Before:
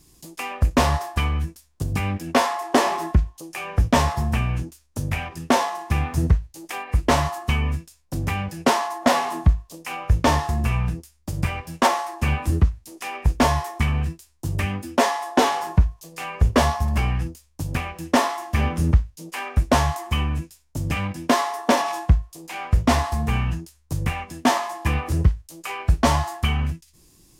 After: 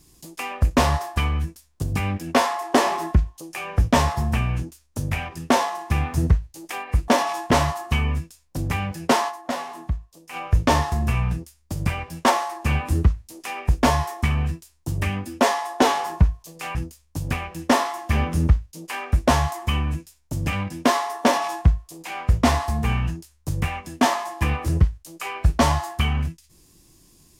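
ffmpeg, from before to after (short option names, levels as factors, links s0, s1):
-filter_complex "[0:a]asplit=6[s0][s1][s2][s3][s4][s5];[s0]atrim=end=7.082[s6];[s1]atrim=start=21.668:end=22.102[s7];[s2]atrim=start=7.078:end=9.26,asetpts=PTS-STARTPTS,afade=t=out:st=1.772:d=0.41:c=exp:silence=0.334965[s8];[s3]atrim=start=9.26:end=9.53,asetpts=PTS-STARTPTS,volume=0.335[s9];[s4]atrim=start=9.53:end=16.322,asetpts=PTS-STARTPTS,afade=t=in:d=0.41:c=exp:silence=0.334965[s10];[s5]atrim=start=17.188[s11];[s6][s7]acrossfade=d=0.004:c1=hsin:c2=hsin[s12];[s8][s9][s10]concat=n=3:v=0:a=1[s13];[s12][s13]acrossfade=d=0.004:c1=hsin:c2=hsin[s14];[s14][s11]acrossfade=d=0.004:c1=hsin:c2=hsin"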